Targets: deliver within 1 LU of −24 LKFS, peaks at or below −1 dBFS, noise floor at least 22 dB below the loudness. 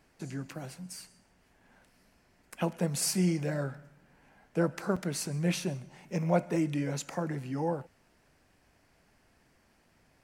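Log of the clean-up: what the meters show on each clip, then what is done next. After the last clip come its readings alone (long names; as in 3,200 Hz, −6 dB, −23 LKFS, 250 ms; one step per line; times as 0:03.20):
number of dropouts 1; longest dropout 5.0 ms; integrated loudness −32.5 LKFS; sample peak −13.5 dBFS; target loudness −24.0 LKFS
→ repair the gap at 0:04.96, 5 ms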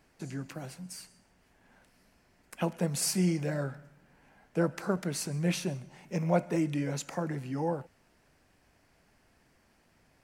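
number of dropouts 0; integrated loudness −32.5 LKFS; sample peak −13.5 dBFS; target loudness −24.0 LKFS
→ level +8.5 dB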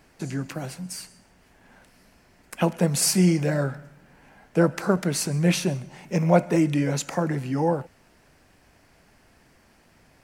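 integrated loudness −24.0 LKFS; sample peak −5.0 dBFS; background noise floor −59 dBFS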